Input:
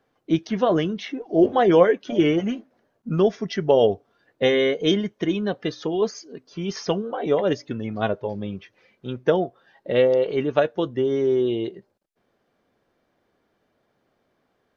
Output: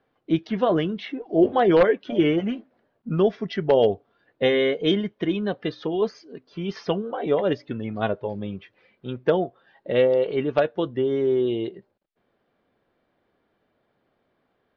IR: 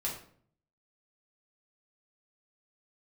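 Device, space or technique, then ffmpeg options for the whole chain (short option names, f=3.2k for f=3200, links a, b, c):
synthesiser wavefolder: -af "aeval=exprs='0.422*(abs(mod(val(0)/0.422+3,4)-2)-1)':c=same,lowpass=f=4.2k:w=0.5412,lowpass=f=4.2k:w=1.3066,volume=-1dB"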